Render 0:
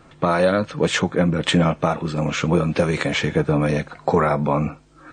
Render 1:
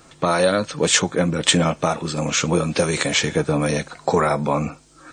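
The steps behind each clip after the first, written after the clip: tone controls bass -3 dB, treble +14 dB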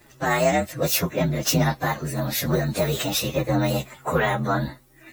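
frequency axis rescaled in octaves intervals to 122%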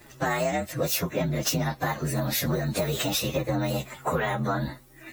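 compression, threshold -26 dBFS, peak gain reduction 10.5 dB; trim +2.5 dB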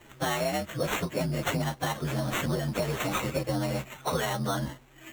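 sample-and-hold 9×; trim -2.5 dB

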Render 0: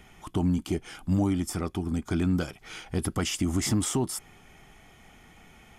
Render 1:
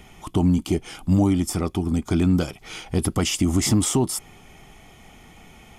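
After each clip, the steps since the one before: peaking EQ 1.6 kHz -6.5 dB 0.53 oct; trim +6.5 dB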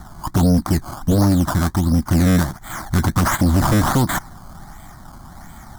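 decimation with a swept rate 16×, swing 100% 1.4 Hz; static phaser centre 1.1 kHz, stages 4; sine folder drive 7 dB, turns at -11 dBFS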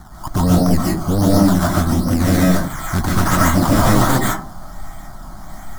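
reverberation RT60 0.40 s, pre-delay 100 ms, DRR -5 dB; trim -2 dB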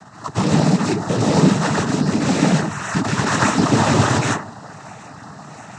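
in parallel at -7.5 dB: integer overflow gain 12.5 dB; on the sum: noise-vocoded speech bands 12; trim -1 dB

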